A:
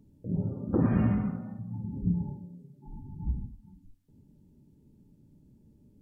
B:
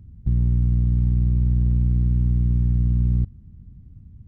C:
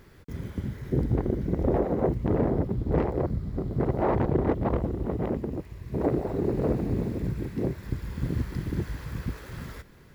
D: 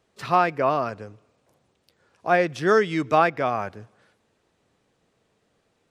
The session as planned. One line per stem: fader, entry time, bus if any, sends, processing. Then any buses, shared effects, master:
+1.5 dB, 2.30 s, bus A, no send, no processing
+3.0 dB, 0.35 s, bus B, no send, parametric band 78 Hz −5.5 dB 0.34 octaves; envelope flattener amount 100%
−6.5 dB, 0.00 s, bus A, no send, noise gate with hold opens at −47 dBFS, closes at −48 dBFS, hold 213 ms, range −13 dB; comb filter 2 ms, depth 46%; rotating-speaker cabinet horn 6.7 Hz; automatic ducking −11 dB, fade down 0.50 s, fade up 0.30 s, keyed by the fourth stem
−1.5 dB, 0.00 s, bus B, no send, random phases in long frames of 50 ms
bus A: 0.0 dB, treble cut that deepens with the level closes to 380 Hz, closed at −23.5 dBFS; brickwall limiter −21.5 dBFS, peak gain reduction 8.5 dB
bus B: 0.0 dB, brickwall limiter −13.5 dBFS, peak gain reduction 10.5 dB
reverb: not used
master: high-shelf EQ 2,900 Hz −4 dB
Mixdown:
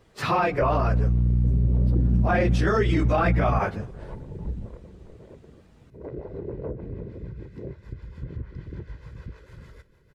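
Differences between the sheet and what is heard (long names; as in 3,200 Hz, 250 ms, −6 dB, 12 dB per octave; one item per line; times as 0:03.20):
stem A: entry 2.30 s → 1.20 s
stem B: missing envelope flattener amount 100%
stem D −1.5 dB → +8.0 dB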